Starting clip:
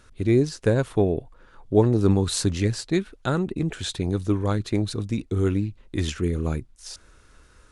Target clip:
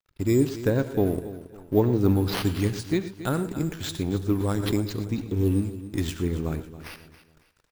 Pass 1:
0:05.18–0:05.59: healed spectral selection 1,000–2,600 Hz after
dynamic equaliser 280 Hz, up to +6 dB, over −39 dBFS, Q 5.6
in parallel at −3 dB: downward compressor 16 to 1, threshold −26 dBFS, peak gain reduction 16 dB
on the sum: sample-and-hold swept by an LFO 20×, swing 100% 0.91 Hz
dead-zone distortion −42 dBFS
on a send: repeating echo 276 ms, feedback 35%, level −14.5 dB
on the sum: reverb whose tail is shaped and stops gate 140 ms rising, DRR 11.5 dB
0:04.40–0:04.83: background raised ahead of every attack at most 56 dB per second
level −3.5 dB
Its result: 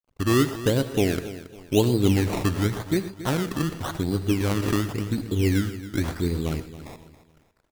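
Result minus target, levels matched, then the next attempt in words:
downward compressor: peak gain reduction −8 dB; sample-and-hold swept by an LFO: distortion +9 dB
0:05.18–0:05.59: healed spectral selection 1,000–2,600 Hz after
dynamic equaliser 280 Hz, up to +6 dB, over −39 dBFS, Q 5.6
in parallel at −3 dB: downward compressor 16 to 1, threshold −34.5 dBFS, peak gain reduction 24 dB
on the sum: sample-and-hold swept by an LFO 4×, swing 100% 0.91 Hz
dead-zone distortion −42 dBFS
on a send: repeating echo 276 ms, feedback 35%, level −14.5 dB
on the sum: reverb whose tail is shaped and stops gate 140 ms rising, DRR 11.5 dB
0:04.40–0:04.83: background raised ahead of every attack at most 56 dB per second
level −3.5 dB

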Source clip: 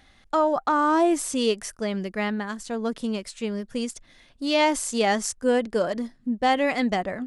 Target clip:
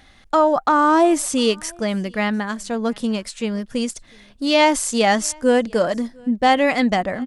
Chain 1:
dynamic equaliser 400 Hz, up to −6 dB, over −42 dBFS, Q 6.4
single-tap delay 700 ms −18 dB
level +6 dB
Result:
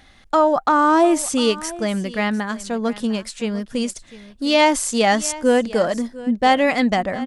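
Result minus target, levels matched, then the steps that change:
echo-to-direct +10.5 dB
change: single-tap delay 700 ms −28.5 dB

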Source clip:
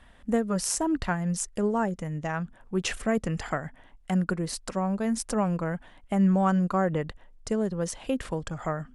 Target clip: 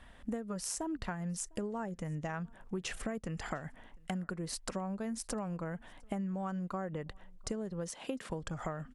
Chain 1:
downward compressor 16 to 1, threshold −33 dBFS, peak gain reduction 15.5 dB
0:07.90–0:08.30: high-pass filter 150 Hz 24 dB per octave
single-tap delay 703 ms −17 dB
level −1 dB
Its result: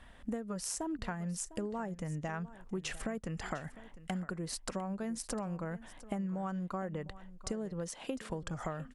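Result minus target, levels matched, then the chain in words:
echo-to-direct +11.5 dB
downward compressor 16 to 1, threshold −33 dBFS, peak gain reduction 15.5 dB
0:07.90–0:08.30: high-pass filter 150 Hz 24 dB per octave
single-tap delay 703 ms −28.5 dB
level −1 dB

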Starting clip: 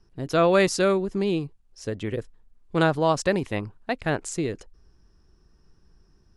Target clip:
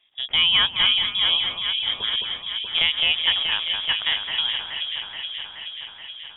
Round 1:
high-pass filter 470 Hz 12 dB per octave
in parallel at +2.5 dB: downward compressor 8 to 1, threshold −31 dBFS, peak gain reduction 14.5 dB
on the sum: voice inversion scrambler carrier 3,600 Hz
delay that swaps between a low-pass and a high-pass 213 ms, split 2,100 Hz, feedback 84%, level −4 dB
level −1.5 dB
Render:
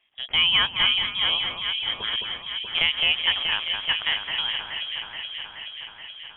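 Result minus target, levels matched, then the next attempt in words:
500 Hz band +3.0 dB
high-pass filter 210 Hz 12 dB per octave
in parallel at +2.5 dB: downward compressor 8 to 1, threshold −31 dBFS, peak gain reduction 16 dB
on the sum: voice inversion scrambler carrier 3,600 Hz
delay that swaps between a low-pass and a high-pass 213 ms, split 2,100 Hz, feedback 84%, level −4 dB
level −1.5 dB

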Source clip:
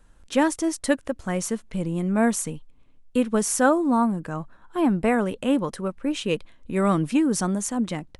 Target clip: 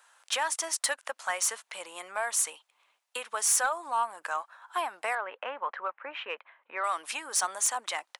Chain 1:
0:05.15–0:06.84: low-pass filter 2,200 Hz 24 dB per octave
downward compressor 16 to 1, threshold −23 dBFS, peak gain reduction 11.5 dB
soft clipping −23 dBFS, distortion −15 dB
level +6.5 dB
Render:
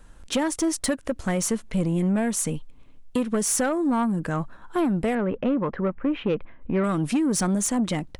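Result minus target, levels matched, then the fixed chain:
1,000 Hz band −6.0 dB
0:05.15–0:06.84: low-pass filter 2,200 Hz 24 dB per octave
downward compressor 16 to 1, threshold −23 dBFS, peak gain reduction 11.5 dB
high-pass filter 790 Hz 24 dB per octave
soft clipping −23 dBFS, distortion −18 dB
level +6.5 dB

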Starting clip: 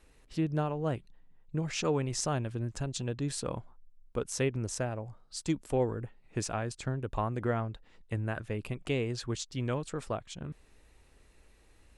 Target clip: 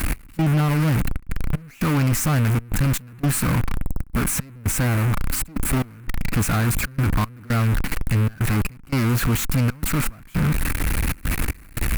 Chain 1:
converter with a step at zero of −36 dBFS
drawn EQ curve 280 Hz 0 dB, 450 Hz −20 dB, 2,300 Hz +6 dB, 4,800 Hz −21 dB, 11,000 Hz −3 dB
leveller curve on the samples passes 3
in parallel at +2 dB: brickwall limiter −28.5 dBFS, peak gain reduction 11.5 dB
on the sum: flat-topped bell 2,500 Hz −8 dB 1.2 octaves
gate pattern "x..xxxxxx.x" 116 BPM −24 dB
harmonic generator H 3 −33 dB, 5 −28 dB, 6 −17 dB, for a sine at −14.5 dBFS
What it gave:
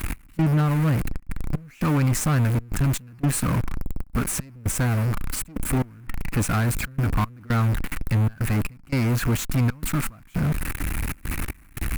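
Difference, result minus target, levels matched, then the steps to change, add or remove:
converter with a step at zero: distortion −7 dB
change: converter with a step at zero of −26 dBFS

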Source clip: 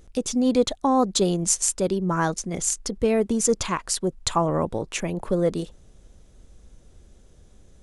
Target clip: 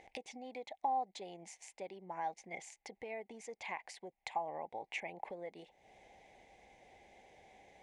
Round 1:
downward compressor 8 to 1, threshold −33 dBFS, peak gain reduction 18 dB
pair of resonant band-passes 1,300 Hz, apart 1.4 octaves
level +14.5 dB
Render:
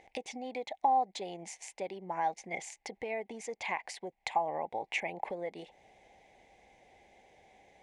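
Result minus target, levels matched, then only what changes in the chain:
downward compressor: peak gain reduction −7.5 dB
change: downward compressor 8 to 1, threshold −41.5 dBFS, peak gain reduction 25.5 dB

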